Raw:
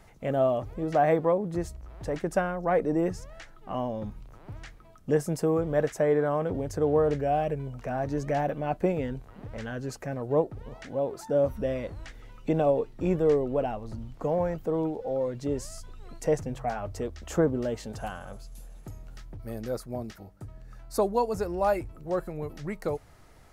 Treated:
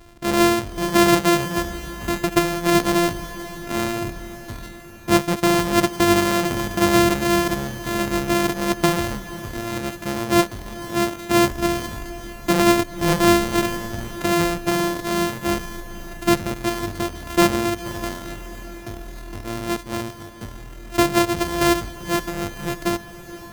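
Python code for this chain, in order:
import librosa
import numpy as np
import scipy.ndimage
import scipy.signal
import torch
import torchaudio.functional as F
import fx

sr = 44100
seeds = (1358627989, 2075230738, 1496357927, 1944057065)

y = np.r_[np.sort(x[:len(x) // 128 * 128].reshape(-1, 128), axis=1).ravel(), x[len(x) // 128 * 128:]]
y = fx.echo_diffused(y, sr, ms=503, feedback_pct=65, wet_db=-14.5)
y = y * librosa.db_to_amplitude(7.5)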